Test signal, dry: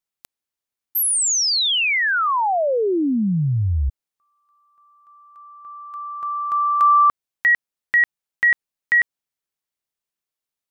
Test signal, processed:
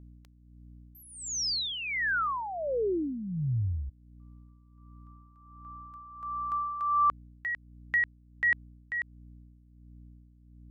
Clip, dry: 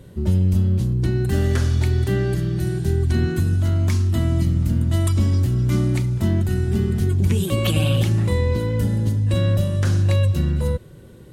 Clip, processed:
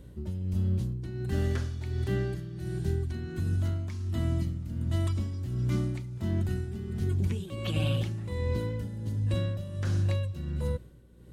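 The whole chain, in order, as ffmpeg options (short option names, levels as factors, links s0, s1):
-filter_complex "[0:a]aeval=exprs='val(0)+0.01*(sin(2*PI*60*n/s)+sin(2*PI*2*60*n/s)/2+sin(2*PI*3*60*n/s)/3+sin(2*PI*4*60*n/s)/4+sin(2*PI*5*60*n/s)/5)':c=same,acrossover=split=6400[s0][s1];[s1]acompressor=threshold=0.00562:ratio=4:attack=1:release=60[s2];[s0][s2]amix=inputs=2:normalize=0,tremolo=f=1.4:d=0.64,volume=0.376"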